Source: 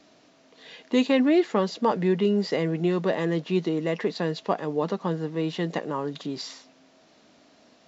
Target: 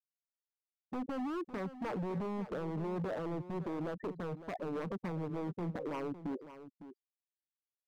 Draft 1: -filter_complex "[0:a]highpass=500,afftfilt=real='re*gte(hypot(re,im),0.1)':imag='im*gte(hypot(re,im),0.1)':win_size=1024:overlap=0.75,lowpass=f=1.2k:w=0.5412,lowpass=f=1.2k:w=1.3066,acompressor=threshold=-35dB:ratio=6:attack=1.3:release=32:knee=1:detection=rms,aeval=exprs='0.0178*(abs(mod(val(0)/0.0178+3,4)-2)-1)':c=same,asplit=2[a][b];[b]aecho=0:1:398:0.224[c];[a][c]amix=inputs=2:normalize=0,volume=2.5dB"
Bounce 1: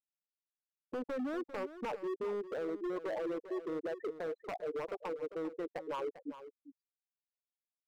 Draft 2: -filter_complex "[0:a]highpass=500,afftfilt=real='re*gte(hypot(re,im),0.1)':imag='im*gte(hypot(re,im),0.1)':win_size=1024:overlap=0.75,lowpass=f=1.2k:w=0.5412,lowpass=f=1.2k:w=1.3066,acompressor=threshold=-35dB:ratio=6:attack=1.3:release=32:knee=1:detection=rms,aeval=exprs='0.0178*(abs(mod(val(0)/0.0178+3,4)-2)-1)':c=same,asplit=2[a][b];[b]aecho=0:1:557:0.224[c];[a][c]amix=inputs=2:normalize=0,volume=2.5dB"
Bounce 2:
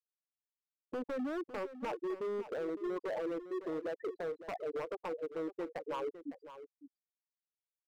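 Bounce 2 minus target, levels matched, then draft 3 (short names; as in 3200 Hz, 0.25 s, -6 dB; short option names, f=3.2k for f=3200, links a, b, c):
500 Hz band +3.0 dB
-filter_complex "[0:a]afftfilt=real='re*gte(hypot(re,im),0.1)':imag='im*gte(hypot(re,im),0.1)':win_size=1024:overlap=0.75,lowpass=f=1.2k:w=0.5412,lowpass=f=1.2k:w=1.3066,acompressor=threshold=-35dB:ratio=6:attack=1.3:release=32:knee=1:detection=rms,aeval=exprs='0.0178*(abs(mod(val(0)/0.0178+3,4)-2)-1)':c=same,asplit=2[a][b];[b]aecho=0:1:557:0.224[c];[a][c]amix=inputs=2:normalize=0,volume=2.5dB"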